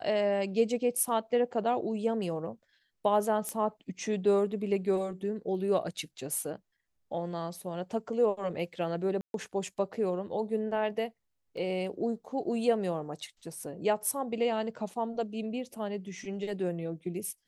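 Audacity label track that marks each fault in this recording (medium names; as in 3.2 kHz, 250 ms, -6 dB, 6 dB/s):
3.490000	3.490000	pop -20 dBFS
9.210000	9.340000	dropout 132 ms
11.570000	11.570000	dropout 2.3 ms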